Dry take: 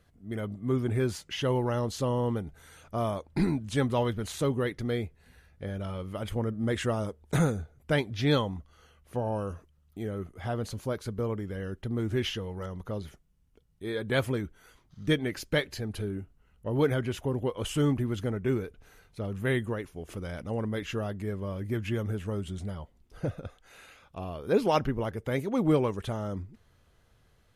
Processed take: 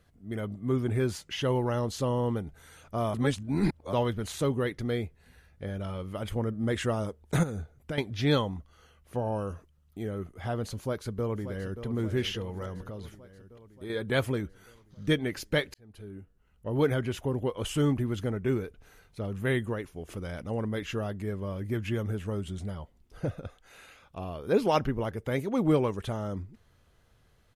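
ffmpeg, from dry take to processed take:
-filter_complex "[0:a]asettb=1/sr,asplit=3[a][b][c];[a]atrim=end=7.434[d];[b]atrim=start=7.43:end=7.98,asetpts=PTS-STARTPTS,afade=t=in:d=0.004:c=qsin,afade=t=out:st=0.546:d=0.004:c=qsin,acompressor=threshold=-29dB:ratio=12:attack=3.2:release=140:knee=1:detection=peak[e];[c]atrim=start=7.976[f];[d][e]acrossfade=d=0.004:c1=hsin:c2=qsin[g];[g][f]acrossfade=d=0.004:c1=qsin:c2=hsin,asplit=2[h][i];[i]afade=t=in:st=10.74:d=0.01,afade=t=out:st=11.84:d=0.01,aecho=0:1:580|1160|1740|2320|2900|3480|4060|4640:0.281838|0.183195|0.119077|0.0773998|0.0503099|0.0327014|0.0212559|0.0138164[j];[h][j]amix=inputs=2:normalize=0,asettb=1/sr,asplit=3[k][l][m];[k]atrim=end=12.874[n];[l]atrim=start=12.87:end=13.9,asetpts=PTS-STARTPTS,afade=t=in:d=0.004:c=qsin,afade=t=out:st=1.026:d=0.004:c=qsin,acompressor=threshold=-35dB:ratio=6:attack=3.2:release=140:knee=1:detection=peak[o];[m]atrim=start=13.896[p];[n][o]acrossfade=d=0.004:c1=hsin:c2=qsin[q];[q][p]acrossfade=d=0.004:c1=qsin:c2=hsin,asplit=4[r][s][t][u];[r]atrim=end=3.142[v];[s]atrim=start=3.138:end=3.932,asetpts=PTS-STARTPTS,areverse[w];[t]atrim=start=3.928:end=15.74,asetpts=PTS-STARTPTS,afade=t=out:st=11.808:d=0.004:c=hsin[x];[u]atrim=start=15.74,asetpts=PTS-STARTPTS,afade=t=in:d=1.09[y];[v][w]acrossfade=d=0.004:c1=hsin:c2=hsin[z];[x][y]concat=n=2:v=0:a=1[aa];[z][aa]acrossfade=d=0.004:c1=hsin:c2=hsin"

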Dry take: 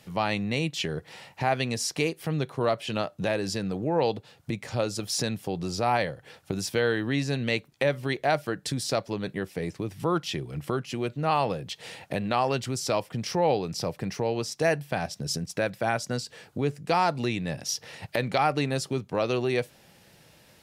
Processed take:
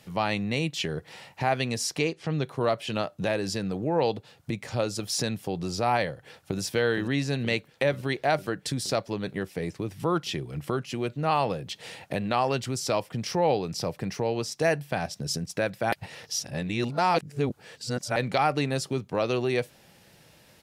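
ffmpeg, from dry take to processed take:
-filter_complex "[0:a]asettb=1/sr,asplit=3[a][b][c];[a]atrim=end=1.984[d];[b]atrim=start=1.98:end=2.44,asetpts=PTS-STARTPTS,afade=t=in:d=0.004:c=qsin,afade=t=out:st=0.456:d=0.004:c=qsin,lowpass=f=7.1k:w=0.5412,lowpass=f=7.1k:w=1.3066[e];[c]atrim=start=2.436[f];[d][e]acrossfade=d=0.004:c1=hsin:c2=qsin[g];[g][f]acrossfade=d=0.004:c1=qsin:c2=hsin,asplit=2[h][i];[i]afade=t=in:st=6.1:d=0.01,afade=t=out:st=6.6:d=0.01,aecho=0:1:470|940|1410|1880|2350|2820|3290|3760|4230|4700|5170|5640:0.354813|0.26611|0.199583|0.149687|0.112265|0.0841989|0.0631492|0.0473619|0.0355214|0.0266411|0.0199808|0.0149856[j];[h][j]amix=inputs=2:normalize=0,asplit=3[k][l][m];[k]atrim=end=15.922[n];[l]atrim=start=15.918:end=18.162,asetpts=PTS-STARTPTS,areverse[o];[m]atrim=start=18.158[p];[n][o]acrossfade=d=0.004:c1=hsin:c2=hsin[q];[q][p]acrossfade=d=0.004:c1=hsin:c2=hsin"

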